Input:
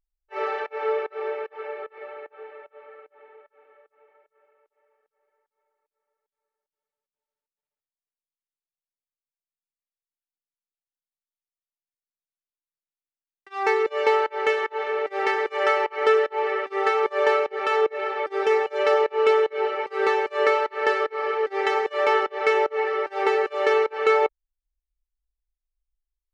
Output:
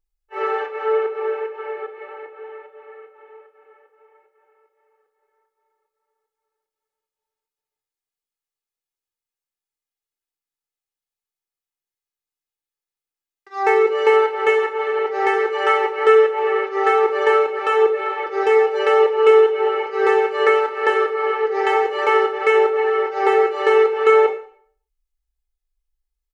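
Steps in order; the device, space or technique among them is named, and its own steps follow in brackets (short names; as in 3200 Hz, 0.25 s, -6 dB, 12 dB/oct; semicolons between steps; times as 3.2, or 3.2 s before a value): microphone above a desk (comb 2.4 ms, depth 74%; reverb RT60 0.50 s, pre-delay 15 ms, DRR 4 dB)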